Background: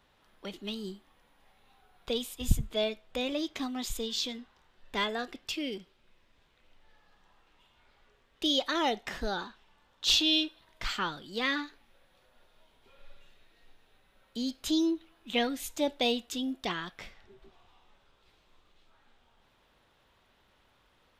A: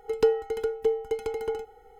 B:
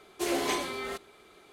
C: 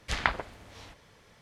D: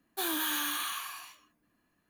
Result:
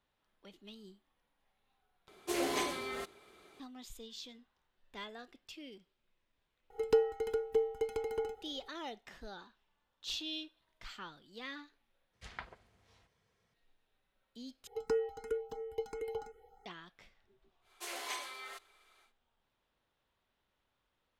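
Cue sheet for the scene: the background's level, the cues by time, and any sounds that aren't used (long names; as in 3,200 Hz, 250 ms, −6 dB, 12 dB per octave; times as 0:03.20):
background −15 dB
0:02.08: overwrite with B −4.5 dB
0:06.70: mix in A −6 dB
0:12.13: overwrite with C −18 dB + notch comb filter 290 Hz
0:14.67: overwrite with A −6.5 dB + frequency shifter mixed with the dry sound +2.9 Hz
0:17.61: mix in B −8 dB, fades 0.10 s + high-pass filter 870 Hz
not used: D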